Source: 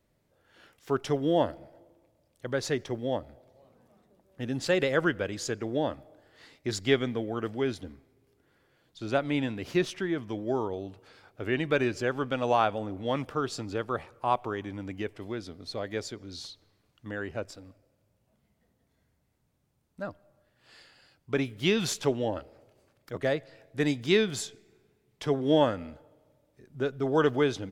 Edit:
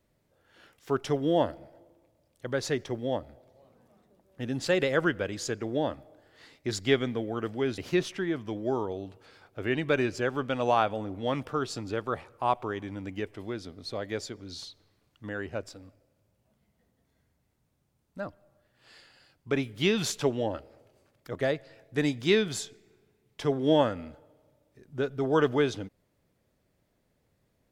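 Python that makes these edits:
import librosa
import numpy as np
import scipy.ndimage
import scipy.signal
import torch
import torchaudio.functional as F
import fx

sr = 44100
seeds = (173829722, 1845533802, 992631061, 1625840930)

y = fx.edit(x, sr, fx.cut(start_s=7.78, length_s=1.82), tone=tone)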